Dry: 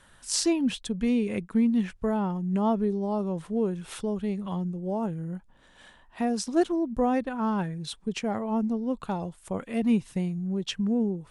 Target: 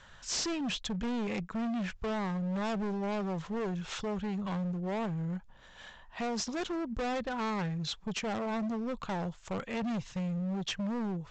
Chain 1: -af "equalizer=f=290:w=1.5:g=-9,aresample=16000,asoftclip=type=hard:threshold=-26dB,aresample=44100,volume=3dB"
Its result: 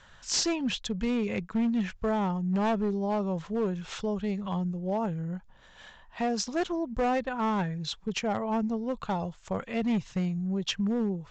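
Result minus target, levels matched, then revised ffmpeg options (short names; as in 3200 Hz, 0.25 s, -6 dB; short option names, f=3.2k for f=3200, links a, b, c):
hard clip: distortion -9 dB
-af "equalizer=f=290:w=1.5:g=-9,aresample=16000,asoftclip=type=hard:threshold=-34.5dB,aresample=44100,volume=3dB"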